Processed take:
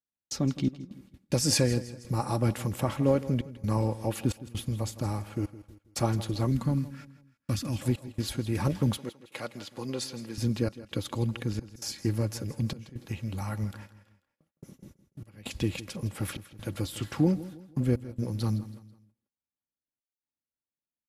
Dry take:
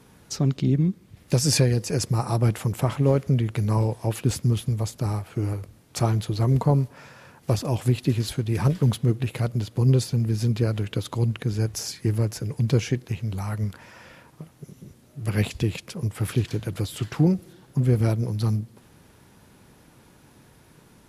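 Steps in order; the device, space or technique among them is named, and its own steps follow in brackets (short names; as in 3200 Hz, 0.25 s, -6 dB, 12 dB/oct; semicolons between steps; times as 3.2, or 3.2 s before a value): gate -43 dBFS, range -48 dB; trance gate with a delay (step gate "xxx.xxxx.xxxxxx." 66 bpm -24 dB; feedback echo 0.163 s, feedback 38%, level -16 dB); 8.97–10.38 weighting filter A; comb 3.6 ms, depth 43%; 6.51–7.82 band shelf 600 Hz -12 dB; gain -3.5 dB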